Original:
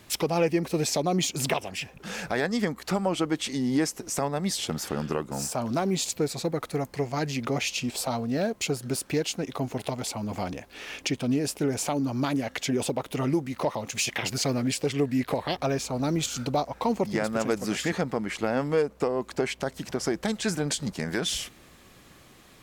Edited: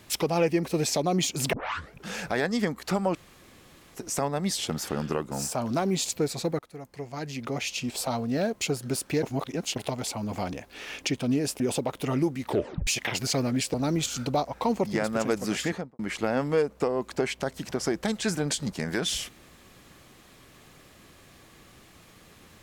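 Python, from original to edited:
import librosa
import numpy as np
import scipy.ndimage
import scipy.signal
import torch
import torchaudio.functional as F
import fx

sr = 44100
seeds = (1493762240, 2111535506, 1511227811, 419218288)

y = fx.studio_fade_out(x, sr, start_s=17.81, length_s=0.38)
y = fx.edit(y, sr, fx.tape_start(start_s=1.53, length_s=0.45),
    fx.room_tone_fill(start_s=3.15, length_s=0.8),
    fx.fade_in_from(start_s=6.59, length_s=1.55, floor_db=-18.0),
    fx.reverse_span(start_s=9.23, length_s=0.53),
    fx.cut(start_s=11.6, length_s=1.11),
    fx.tape_stop(start_s=13.55, length_s=0.43),
    fx.cut(start_s=14.85, length_s=1.09), tone=tone)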